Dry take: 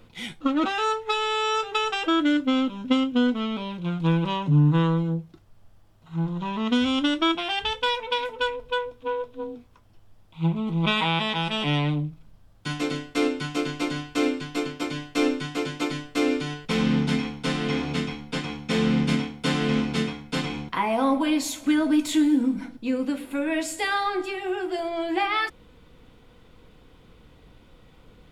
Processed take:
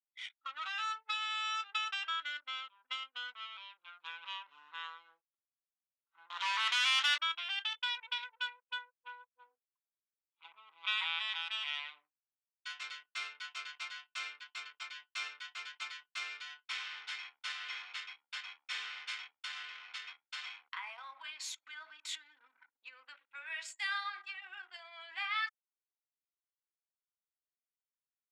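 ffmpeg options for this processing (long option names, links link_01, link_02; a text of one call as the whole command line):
ffmpeg -i in.wav -filter_complex "[0:a]asettb=1/sr,asplit=3[link_01][link_02][link_03];[link_01]atrim=end=6.304[link_04];[link_02]atrim=start=6.3:end=7.18,asetpts=PTS-STARTPTS,afade=type=in:duration=0.004:curve=qsin,afade=type=out:start_time=0.876:duration=0.004:curve=qsin,asplit=2[link_05][link_06];[link_06]highpass=frequency=720:poles=1,volume=29dB,asoftclip=type=tanh:threshold=-10.5dB[link_07];[link_05][link_07]amix=inputs=2:normalize=0,lowpass=frequency=4500:poles=1,volume=-6dB[link_08];[link_03]atrim=start=7.176[link_09];[link_04][link_08]acrossfade=duration=0.004:curve1=hsin:curve2=qsin[link_10];[link_10][link_09]acrossfade=duration=0.004:curve1=qsin:curve2=hsin,asettb=1/sr,asplit=3[link_11][link_12][link_13];[link_11]atrim=end=19.374[link_14];[link_12]atrim=start=19.37:end=23.03,asetpts=PTS-STARTPTS,afade=type=in:duration=0.004:curve=qsin,afade=type=out:start_time=3.656:duration=0.004:curve=qsin,acompressor=threshold=-23dB:ratio=6:attack=3.2:release=140:knee=1:detection=peak[link_15];[link_13]atrim=start=23.026[link_16];[link_14][link_15]acrossfade=duration=0.004:curve1=hsin:curve2=qsin[link_17];[link_17][link_16]acrossfade=duration=0.004:curve1=qsin:curve2=hsin,lowpass=6700,anlmdn=3.98,highpass=frequency=1300:width=0.5412,highpass=frequency=1300:width=1.3066,volume=-8dB" out.wav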